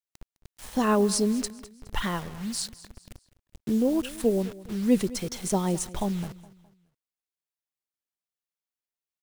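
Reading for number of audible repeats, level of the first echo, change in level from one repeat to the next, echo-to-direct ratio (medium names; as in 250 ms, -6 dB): 2, -18.5 dB, -8.5 dB, -18.0 dB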